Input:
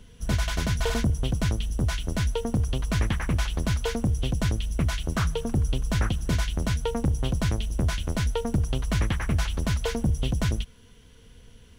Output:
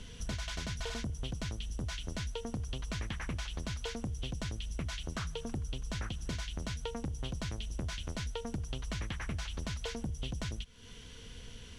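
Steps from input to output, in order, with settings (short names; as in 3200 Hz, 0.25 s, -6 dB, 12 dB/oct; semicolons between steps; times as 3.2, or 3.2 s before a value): high shelf 2500 Hz +12 dB; compressor 4:1, threshold -39 dBFS, peak gain reduction 16.5 dB; air absorption 73 m; gain +1.5 dB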